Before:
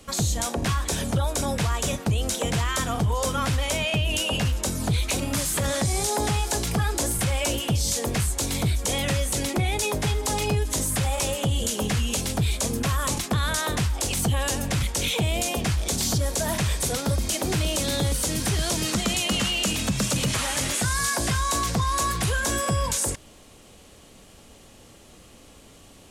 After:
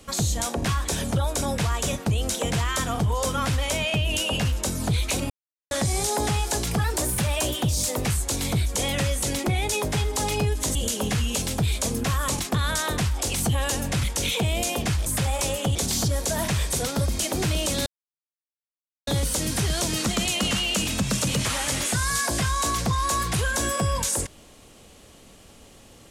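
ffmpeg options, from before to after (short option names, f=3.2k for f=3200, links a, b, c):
-filter_complex "[0:a]asplit=9[a][b][c][d][e][f][g][h][i];[a]atrim=end=5.3,asetpts=PTS-STARTPTS,afade=t=out:st=5.296:d=0.004:c=hsin[j];[b]atrim=start=5.3:end=5.71,asetpts=PTS-STARTPTS,volume=0[k];[c]atrim=start=5.71:end=6.844,asetpts=PTS-STARTPTS,afade=t=in:d=0.004:c=hsin[l];[d]atrim=start=6.84:end=8.17,asetpts=PTS-STARTPTS,asetrate=47628,aresample=44100,atrim=end_sample=54308,asetpts=PTS-STARTPTS[m];[e]atrim=start=8.166:end=10.852[n];[f]atrim=start=11.538:end=15.852[o];[g]atrim=start=10.848:end=11.542[p];[h]atrim=start=15.848:end=17.96,asetpts=PTS-STARTPTS,afade=t=out:st=2.108:d=0.004:c=hsin,apad=pad_dur=1.21[q];[i]atrim=start=17.96,asetpts=PTS-STARTPTS,afade=t=in:d=0.004:c=hsin[r];[j][k][l]concat=n=3:v=0:a=1[s];[s][m]acrossfade=d=0.004:c1=hsin:c2=hsin[t];[t][n]acrossfade=d=0.004:c1=hsin:c2=hsin[u];[u][o]acrossfade=d=0.004:c1=hsin:c2=hsin[v];[v][p]acrossfade=d=0.004:c1=hsin:c2=hsin[w];[q][r]concat=n=2:v=0:a=1[x];[w][x]acrossfade=d=0.004:c1=hsin:c2=hsin"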